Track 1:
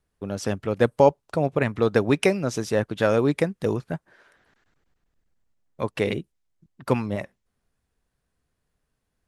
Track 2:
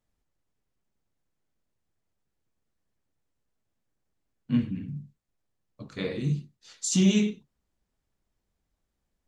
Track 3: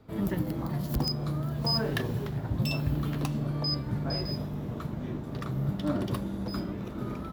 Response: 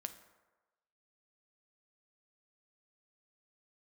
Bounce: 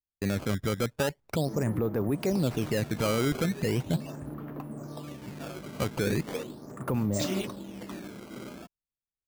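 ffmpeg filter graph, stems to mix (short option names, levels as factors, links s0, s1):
-filter_complex "[0:a]agate=range=0.0224:threshold=0.00447:ratio=3:detection=peak,lowshelf=f=470:g=8.5,acompressor=threshold=0.141:ratio=6,volume=0.891,asplit=2[s0][s1];[1:a]highpass=480,adelay=300,volume=1.12[s2];[2:a]acrossover=split=200 2300:gain=0.2 1 0.178[s3][s4][s5];[s3][s4][s5]amix=inputs=3:normalize=0,adelay=1350,volume=0.668[s6];[s1]apad=whole_len=422438[s7];[s2][s7]sidechaingate=range=0.0224:threshold=0.00178:ratio=16:detection=peak[s8];[s0][s8][s6]amix=inputs=3:normalize=0,equalizer=f=4100:t=o:w=1.5:g=-10,acrusher=samples=14:mix=1:aa=0.000001:lfo=1:lforange=22.4:lforate=0.39,alimiter=limit=0.106:level=0:latency=1:release=11"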